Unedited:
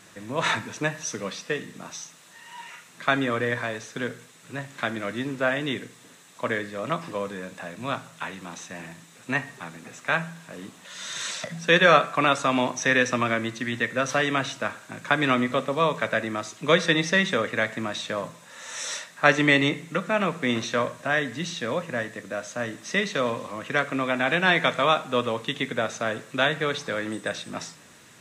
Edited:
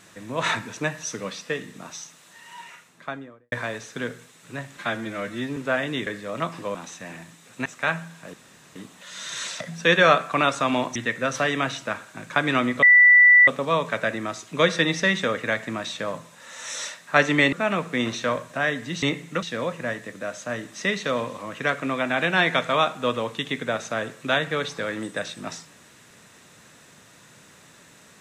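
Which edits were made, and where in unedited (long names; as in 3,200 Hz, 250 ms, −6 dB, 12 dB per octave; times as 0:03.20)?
0:02.54–0:03.52: fade out and dull
0:04.77–0:05.30: time-stretch 1.5×
0:05.80–0:06.56: remove
0:07.24–0:08.44: remove
0:09.35–0:09.91: remove
0:10.59: splice in room tone 0.42 s
0:12.79–0:13.70: remove
0:15.57: insert tone 1,970 Hz −9.5 dBFS 0.65 s
0:19.62–0:20.02: move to 0:21.52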